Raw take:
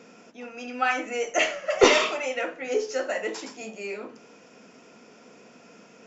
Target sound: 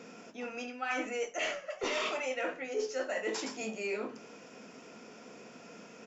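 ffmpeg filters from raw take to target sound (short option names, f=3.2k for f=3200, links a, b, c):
-filter_complex "[0:a]areverse,acompressor=threshold=-31dB:ratio=16,areverse,asplit=2[a][b];[b]adelay=23,volume=-13.5dB[c];[a][c]amix=inputs=2:normalize=0"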